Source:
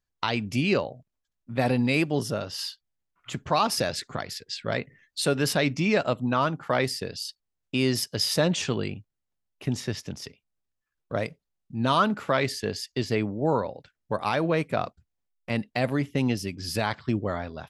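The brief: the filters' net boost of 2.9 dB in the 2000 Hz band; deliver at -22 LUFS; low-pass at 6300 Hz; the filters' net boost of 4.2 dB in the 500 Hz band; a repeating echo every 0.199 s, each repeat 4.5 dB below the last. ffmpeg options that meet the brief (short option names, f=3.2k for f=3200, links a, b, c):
-af "lowpass=6.3k,equalizer=f=500:t=o:g=5,equalizer=f=2k:t=o:g=3.5,aecho=1:1:199|398|597|796|995|1194|1393|1592|1791:0.596|0.357|0.214|0.129|0.0772|0.0463|0.0278|0.0167|0.01,volume=1.5dB"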